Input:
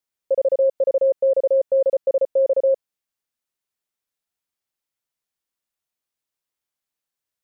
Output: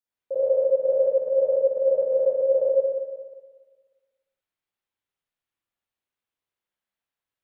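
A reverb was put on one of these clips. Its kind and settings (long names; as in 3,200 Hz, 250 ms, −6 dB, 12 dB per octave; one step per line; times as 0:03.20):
spring reverb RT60 1.4 s, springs 49/59 ms, chirp 35 ms, DRR −10 dB
level −10 dB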